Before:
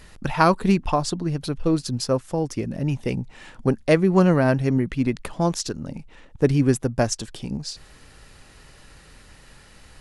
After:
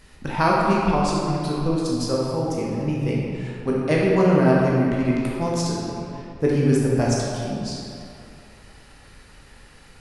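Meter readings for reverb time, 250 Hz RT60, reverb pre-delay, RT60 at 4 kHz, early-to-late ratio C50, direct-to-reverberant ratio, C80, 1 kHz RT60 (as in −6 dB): 2.6 s, 2.4 s, 13 ms, 1.6 s, −2.0 dB, −5.0 dB, 0.0 dB, 2.7 s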